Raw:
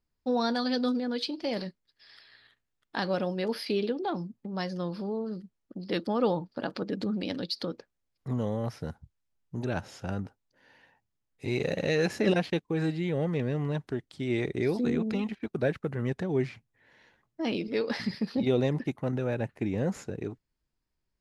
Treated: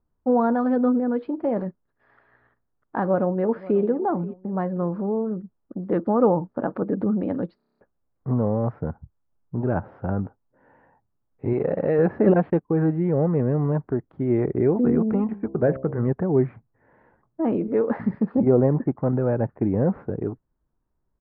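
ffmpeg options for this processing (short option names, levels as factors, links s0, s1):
-filter_complex "[0:a]asplit=2[s0][s1];[s1]afade=t=in:st=3.03:d=0.01,afade=t=out:st=3.8:d=0.01,aecho=0:1:530|1060|1590:0.125893|0.0440624|0.0154218[s2];[s0][s2]amix=inputs=2:normalize=0,asettb=1/sr,asplit=3[s3][s4][s5];[s3]atrim=end=11.534[s6];[s4]atrim=start=11.53:end=11.99,asetpts=PTS-STARTPTS,afade=t=in:d=0.004:c=qsin,afade=t=out:st=0.456:d=0.004:c=qsin,lowshelf=f=150:g=-9.5[s7];[s5]atrim=start=11.986[s8];[s6][s7]acrossfade=d=0.004:c1=hsin:c2=qsin[s9];[s9][s8]acrossfade=d=0.004:c1=qsin:c2=hsin,asettb=1/sr,asplit=3[s10][s11][s12];[s10]atrim=end=15.244[s13];[s11]atrim=start=15.24:end=16.08,asetpts=PTS-STARTPTS,afade=t=in:d=0.004:c=qsin,afade=t=out:st=0.836:d=0.004:c=qsin,bandreject=f=66.52:t=h:w=4,bandreject=f=133.04:t=h:w=4,bandreject=f=199.56:t=h:w=4,bandreject=f=266.08:t=h:w=4,bandreject=f=332.6:t=h:w=4,bandreject=f=399.12:t=h:w=4,bandreject=f=465.64:t=h:w=4,bandreject=f=532.16:t=h:w=4,bandreject=f=598.68:t=h:w=4,bandreject=f=665.2:t=h:w=4,bandreject=f=731.72:t=h:w=4,bandreject=f=798.24:t=h:w=4,bandreject=f=864.76:t=h:w=4,bandreject=f=931.28:t=h:w=4,bandreject=f=997.8:t=h:w=4,bandreject=f=1064.32:t=h:w=4[s14];[s12]atrim=start=16.076[s15];[s13][s14]acrossfade=d=0.004:c1=hsin:c2=qsin[s16];[s16][s15]acrossfade=d=0.004:c1=qsin:c2=hsin,asettb=1/sr,asplit=3[s17][s18][s19];[s17]atrim=end=18.414[s20];[s18]atrim=start=18.41:end=18.98,asetpts=PTS-STARTPTS,afade=t=in:d=0.004:c=qsin,afade=t=out:st=0.566:d=0.004:c=qsin,lowpass=f=2200:w=0.5412,lowpass=f=2200:w=1.3066[s21];[s19]atrim=start=18.976[s22];[s20][s21]acrossfade=d=0.004:c1=hsin:c2=qsin[s23];[s23][s22]acrossfade=d=0.004:c1=qsin:c2=hsin,asplit=9[s24][s25][s26][s27][s28][s29][s30][s31][s32];[s24]atrim=end=7.602[s33];[s25]atrim=start=7.568:end=7.602[s34];[s26]atrim=start=7.568:end=7.602[s35];[s27]atrim=start=7.568:end=7.602[s36];[s28]atrim=start=7.568:end=7.602[s37];[s29]atrim=start=7.568:end=7.602[s38];[s30]atrim=start=7.568:end=7.602[s39];[s31]atrim=start=7.568:end=7.602[s40];[s32]atrim=start=7.808[s41];[s33][s34]acrossfade=d=0.004:c1=hsin:c2=hsin[s42];[s42][s35]acrossfade=d=0.004:c1=hsin:c2=hsin[s43];[s43][s36]acrossfade=d=0.004:c1=hsin:c2=hsin[s44];[s44][s37]acrossfade=d=0.004:c1=hsin:c2=hsin[s45];[s45][s38]acrossfade=d=0.004:c1=hsin:c2=hsin[s46];[s46][s39]acrossfade=d=0.004:c1=hsin:c2=hsin[s47];[s47][s40]acrossfade=d=0.004:c1=hsin:c2=hsin[s48];[s48][s41]acrossfade=d=0.004:c1=hsin:c2=hsin,lowpass=f=1300:w=0.5412,lowpass=f=1300:w=1.3066,volume=2.51"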